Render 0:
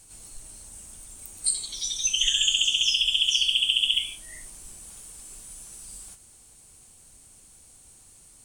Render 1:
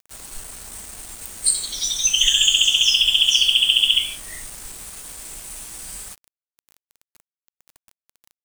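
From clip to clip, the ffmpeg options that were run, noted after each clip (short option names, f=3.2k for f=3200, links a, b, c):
-af "acrusher=bits=6:mix=0:aa=0.000001,volume=6.5dB"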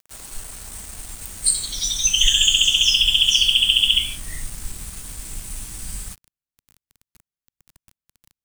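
-af "asubboost=boost=4.5:cutoff=230"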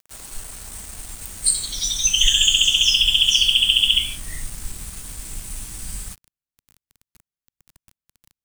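-af anull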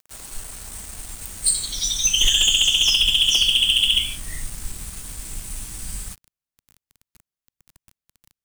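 -af "asoftclip=type=hard:threshold=-11dB"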